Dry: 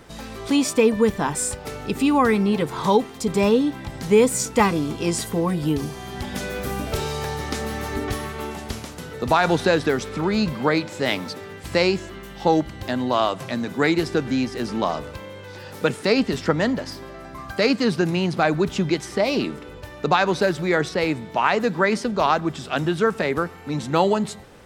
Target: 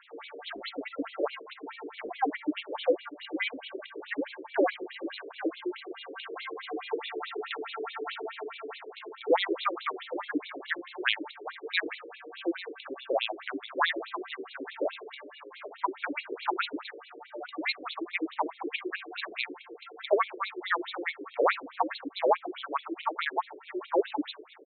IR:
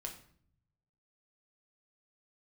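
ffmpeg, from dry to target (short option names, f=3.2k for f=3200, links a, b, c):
-filter_complex "[0:a]asplit=2[a][b];[b]adelay=802,lowpass=f=4.4k:p=1,volume=-14dB,asplit=2[c][d];[d]adelay=802,lowpass=f=4.4k:p=1,volume=0.28,asplit=2[e][f];[f]adelay=802,lowpass=f=4.4k:p=1,volume=0.28[g];[c][e][g]amix=inputs=3:normalize=0[h];[a][h]amix=inputs=2:normalize=0,afreqshift=-490,lowshelf=f=230:t=q:w=3:g=9.5,asetrate=46722,aresample=44100,atempo=0.943874,afftfilt=real='re*between(b*sr/1024,400*pow(3100/400,0.5+0.5*sin(2*PI*4.7*pts/sr))/1.41,400*pow(3100/400,0.5+0.5*sin(2*PI*4.7*pts/sr))*1.41)':imag='im*between(b*sr/1024,400*pow(3100/400,0.5+0.5*sin(2*PI*4.7*pts/sr))/1.41,400*pow(3100/400,0.5+0.5*sin(2*PI*4.7*pts/sr))*1.41)':win_size=1024:overlap=0.75,volume=2.5dB"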